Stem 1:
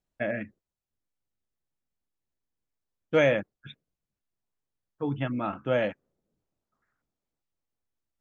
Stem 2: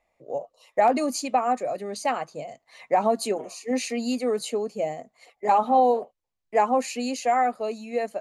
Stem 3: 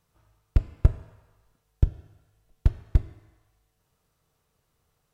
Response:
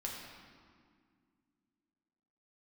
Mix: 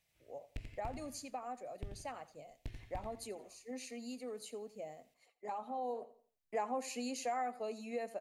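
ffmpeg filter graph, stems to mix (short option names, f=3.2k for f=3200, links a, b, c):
-filter_complex "[1:a]highshelf=f=9.2k:g=7.5,volume=-7dB,afade=t=in:st=5.77:d=0.41:silence=0.281838,asplit=2[a][b];[b]volume=-18.5dB[c];[2:a]highshelf=f=1.6k:t=q:w=3:g=10,aeval=exprs='(tanh(11.2*val(0)+0.45)-tanh(0.45))/11.2':c=same,volume=-12dB,asplit=2[d][e];[e]volume=-7.5dB[f];[c][f]amix=inputs=2:normalize=0,aecho=0:1:86|172|258|344:1|0.28|0.0784|0.022[g];[a][d][g]amix=inputs=3:normalize=0,acompressor=threshold=-41dB:ratio=2"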